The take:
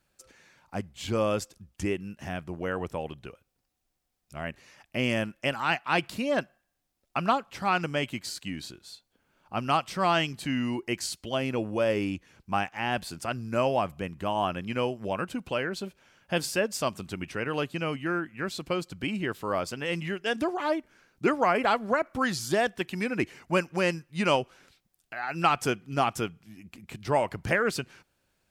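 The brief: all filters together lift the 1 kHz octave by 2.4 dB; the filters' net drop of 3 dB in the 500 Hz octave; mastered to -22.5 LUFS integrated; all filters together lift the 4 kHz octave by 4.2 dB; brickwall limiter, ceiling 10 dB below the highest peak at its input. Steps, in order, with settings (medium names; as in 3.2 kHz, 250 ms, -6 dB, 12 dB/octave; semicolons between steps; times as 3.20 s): peaking EQ 500 Hz -5.5 dB; peaking EQ 1 kHz +4.5 dB; peaking EQ 4 kHz +6 dB; trim +8 dB; peak limiter -9 dBFS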